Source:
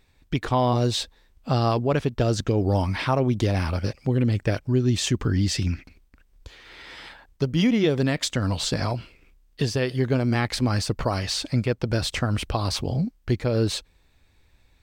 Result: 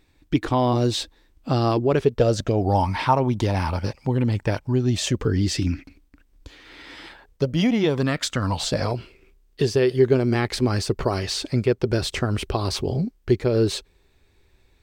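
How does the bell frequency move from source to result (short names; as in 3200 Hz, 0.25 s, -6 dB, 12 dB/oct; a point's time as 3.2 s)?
bell +11.5 dB 0.34 oct
1.72 s 310 Hz
2.89 s 910 Hz
4.7 s 910 Hz
5.64 s 290 Hz
6.97 s 290 Hz
8.26 s 1500 Hz
8.96 s 390 Hz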